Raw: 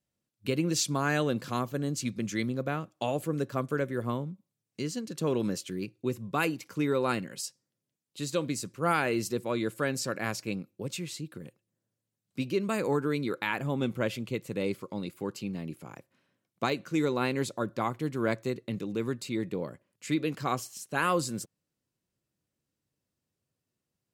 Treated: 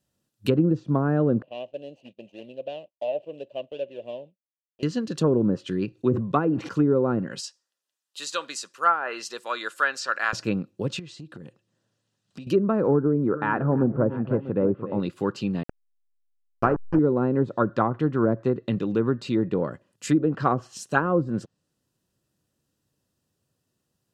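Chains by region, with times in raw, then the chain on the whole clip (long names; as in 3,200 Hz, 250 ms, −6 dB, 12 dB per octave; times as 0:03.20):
0:01.42–0:04.83: running median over 25 samples + pair of resonant band-passes 1,300 Hz, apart 2.2 octaves + downward expander −57 dBFS
0:05.92–0:06.69: high-pass filter 110 Hz + notch filter 4,900 Hz + level that may fall only so fast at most 70 dB per second
0:07.40–0:10.33: high-pass filter 1,000 Hz + high-shelf EQ 8,000 Hz −7 dB
0:10.99–0:12.47: downward compressor, threshold −45 dBFS + high-frequency loss of the air 100 metres + one half of a high-frequency compander encoder only
0:13.03–0:15.00: low-pass filter 1,200 Hz + multi-tap delay 298/326/644 ms −13.5/−19/−17 dB
0:15.63–0:16.99: hold until the input has moved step −28 dBFS + moving average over 12 samples
whole clip: notch filter 2,200 Hz, Q 5; treble cut that deepens with the level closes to 510 Hz, closed at −24.5 dBFS; dynamic equaliser 1,400 Hz, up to +7 dB, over −54 dBFS, Q 2.6; level +8.5 dB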